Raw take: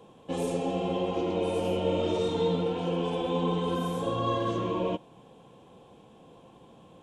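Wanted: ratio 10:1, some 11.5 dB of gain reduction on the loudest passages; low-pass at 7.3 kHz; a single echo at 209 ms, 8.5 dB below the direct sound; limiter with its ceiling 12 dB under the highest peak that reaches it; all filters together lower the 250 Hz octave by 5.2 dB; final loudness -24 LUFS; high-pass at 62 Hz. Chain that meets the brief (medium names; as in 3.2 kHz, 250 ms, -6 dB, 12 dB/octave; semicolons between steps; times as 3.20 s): high-pass 62 Hz; low-pass 7.3 kHz; peaking EQ 250 Hz -8.5 dB; compression 10:1, threshold -37 dBFS; peak limiter -39.5 dBFS; delay 209 ms -8.5 dB; trim +24.5 dB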